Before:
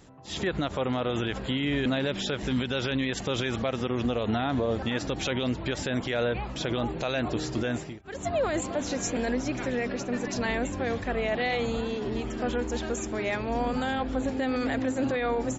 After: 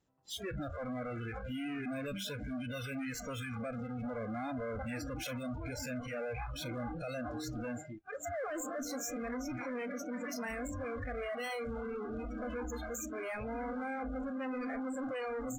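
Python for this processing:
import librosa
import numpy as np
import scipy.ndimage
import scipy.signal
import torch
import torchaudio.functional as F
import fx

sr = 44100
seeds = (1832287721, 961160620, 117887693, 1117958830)

y = fx.tube_stage(x, sr, drive_db=41.0, bias=0.6)
y = fx.noise_reduce_blind(y, sr, reduce_db=28)
y = y * 10.0 ** (5.0 / 20.0)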